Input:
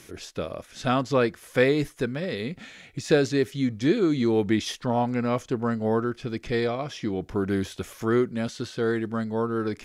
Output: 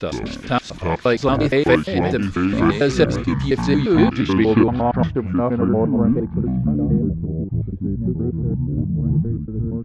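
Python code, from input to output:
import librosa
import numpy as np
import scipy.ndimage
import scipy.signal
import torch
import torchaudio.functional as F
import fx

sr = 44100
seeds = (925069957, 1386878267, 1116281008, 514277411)

y = fx.block_reorder(x, sr, ms=117.0, group=4)
y = fx.echo_pitch(y, sr, ms=81, semitones=-7, count=2, db_per_echo=-3.0)
y = fx.filter_sweep_lowpass(y, sr, from_hz=6300.0, to_hz=200.0, start_s=3.58, end_s=7.23, q=0.82)
y = F.gain(torch.from_numpy(y), 5.5).numpy()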